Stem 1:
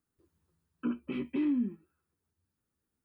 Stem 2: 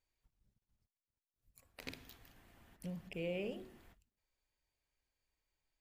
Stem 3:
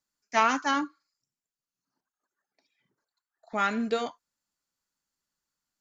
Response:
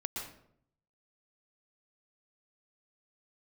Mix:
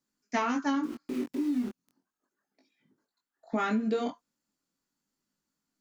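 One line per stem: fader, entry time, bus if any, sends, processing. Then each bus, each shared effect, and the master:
+2.5 dB, 0.00 s, bus A, no send, three-band isolator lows -20 dB, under 310 Hz, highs -23 dB, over 2500 Hz
-16.0 dB, 0.00 s, bus A, no send, auto duck -7 dB, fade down 1.85 s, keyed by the third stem
+2.5 dB, 0.00 s, no bus, no send, dry
bus A: 0.0 dB, bit-crush 7-bit; limiter -31.5 dBFS, peak gain reduction 5 dB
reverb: off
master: bell 250 Hz +13 dB 1.5 oct; chorus 0.36 Hz, delay 19 ms, depth 5.1 ms; compressor 10:1, threshold -25 dBFS, peak gain reduction 11 dB

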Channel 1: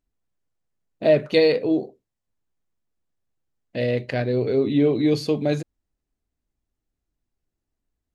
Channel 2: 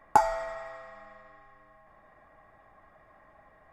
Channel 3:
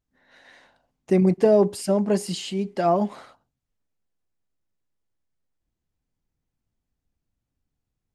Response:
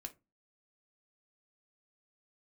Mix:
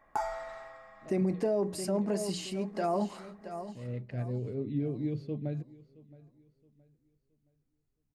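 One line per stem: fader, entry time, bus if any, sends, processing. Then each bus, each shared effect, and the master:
-18.0 dB, 0.00 s, no send, echo send -21 dB, tone controls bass +14 dB, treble -15 dB; rotary speaker horn 8 Hz; auto duck -22 dB, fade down 1.60 s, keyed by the third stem
-6.0 dB, 0.00 s, no send, no echo send, dry
-8.0 dB, 0.00 s, send -5 dB, echo send -12 dB, bell 3300 Hz -7 dB 0.24 oct; notches 60/120/180 Hz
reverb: on, RT60 0.25 s, pre-delay 3 ms
echo: feedback echo 0.67 s, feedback 33%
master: limiter -21 dBFS, peak gain reduction 8.5 dB

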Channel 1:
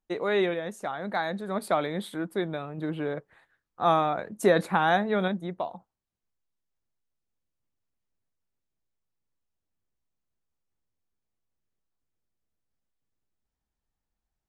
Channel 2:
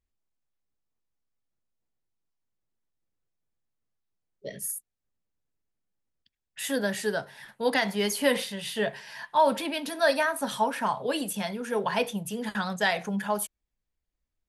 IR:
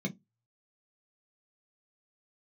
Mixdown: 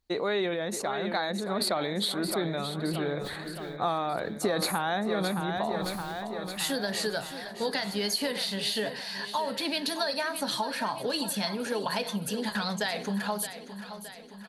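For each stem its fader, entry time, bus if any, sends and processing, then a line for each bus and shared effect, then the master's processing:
+1.0 dB, 0.00 s, no send, echo send -11 dB, sustainer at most 51 dB/s
+2.0 dB, 0.00 s, no send, echo send -13 dB, compressor, threshold -28 dBFS, peak gain reduction 11.5 dB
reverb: off
echo: feedback echo 0.619 s, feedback 58%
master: bell 4300 Hz +14 dB 0.31 oct; compressor 6:1, threshold -25 dBFS, peak gain reduction 11 dB

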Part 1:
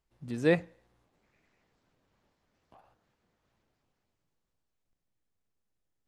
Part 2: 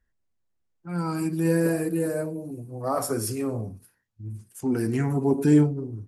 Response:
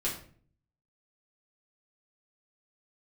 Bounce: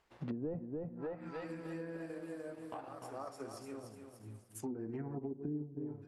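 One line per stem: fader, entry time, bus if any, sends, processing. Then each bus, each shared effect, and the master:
-1.0 dB, 0.00 s, no send, echo send -6 dB, overdrive pedal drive 24 dB, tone 1800 Hz, clips at -12 dBFS
-6.0 dB, 0.00 s, no send, echo send -10 dB, low shelf 210 Hz -9.5 dB; auto duck -18 dB, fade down 1.80 s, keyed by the first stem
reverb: off
echo: feedback echo 0.297 s, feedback 39%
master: treble ducked by the level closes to 310 Hz, closed at -28 dBFS; transient shaper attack +3 dB, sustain -5 dB; compressor 3:1, threshold -40 dBFS, peak gain reduction 12 dB

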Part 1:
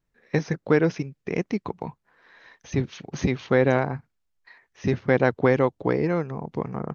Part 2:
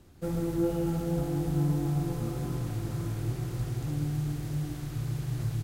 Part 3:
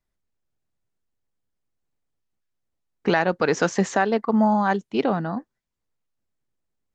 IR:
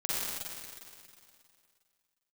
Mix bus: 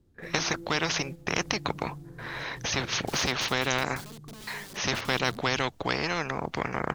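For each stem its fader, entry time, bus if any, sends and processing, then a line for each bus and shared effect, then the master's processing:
-0.5 dB, 0.00 s, no bus, no send, gate with hold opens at -51 dBFS; spectral compressor 4:1
-8.5 dB, 0.00 s, bus A, no send, chopper 0.78 Hz, depth 65%, duty 90%
-5.0 dB, 0.00 s, bus A, no send, HPF 88 Hz 6 dB/oct; wrapped overs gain 20.5 dB
bus A: 0.0 dB, band shelf 1300 Hz -8 dB 2.4 oct; compressor 16:1, threshold -40 dBFS, peak gain reduction 12.5 dB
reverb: off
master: mismatched tape noise reduction decoder only

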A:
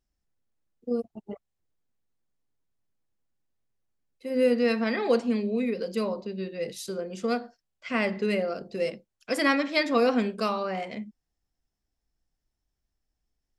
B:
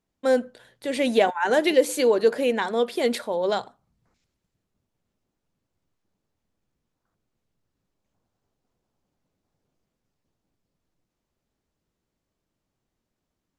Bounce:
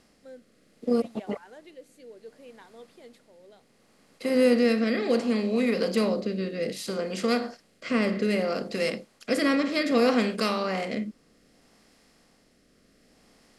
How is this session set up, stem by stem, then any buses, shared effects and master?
0.0 dB, 0.00 s, no send, per-bin compression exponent 0.6; tone controls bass +3 dB, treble +3 dB
-16.0 dB, 0.00 s, no send, auto duck -9 dB, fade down 0.45 s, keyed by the first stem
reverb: off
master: rotary speaker horn 0.65 Hz

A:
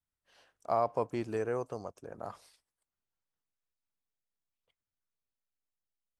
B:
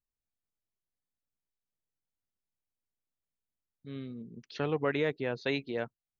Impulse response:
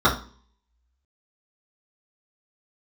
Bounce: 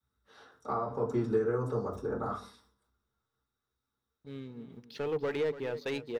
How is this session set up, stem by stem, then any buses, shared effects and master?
-3.5 dB, 0.00 s, send -5.5 dB, no echo send, compressor 8:1, threshold -40 dBFS, peak gain reduction 15.5 dB; bell 720 Hz -6 dB 1.2 oct; sustainer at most 130 dB/s
-10.0 dB, 0.40 s, no send, echo send -14 dB, sample leveller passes 2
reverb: on, RT60 0.40 s, pre-delay 3 ms
echo: feedback echo 0.285 s, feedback 18%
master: de-hum 49.62 Hz, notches 6; small resonant body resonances 450/860 Hz, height 7 dB

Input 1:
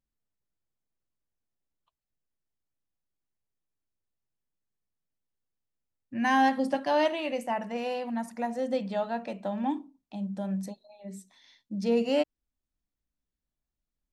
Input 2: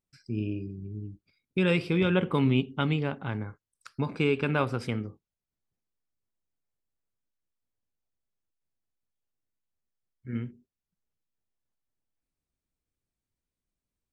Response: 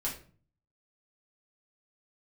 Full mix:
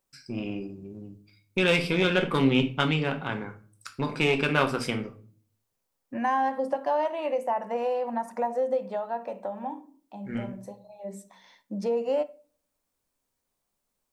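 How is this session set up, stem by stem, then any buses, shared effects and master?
+2.0 dB, 0.00 s, send -15 dB, graphic EQ 125/500/1000/4000 Hz +6/+10/+10/-5 dB; compressor 3:1, threshold -30 dBFS, peak gain reduction 14.5 dB; auto duck -12 dB, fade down 1.55 s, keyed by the second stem
+1.5 dB, 0.00 s, send -4 dB, one diode to ground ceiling -27.5 dBFS; high shelf 4800 Hz +7.5 dB; notches 50/100 Hz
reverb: on, RT60 0.40 s, pre-delay 4 ms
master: low shelf 190 Hz -11.5 dB

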